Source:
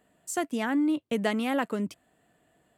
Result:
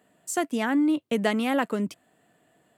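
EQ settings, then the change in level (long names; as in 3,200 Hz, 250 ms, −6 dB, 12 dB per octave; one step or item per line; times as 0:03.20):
high-pass filter 110 Hz
+3.0 dB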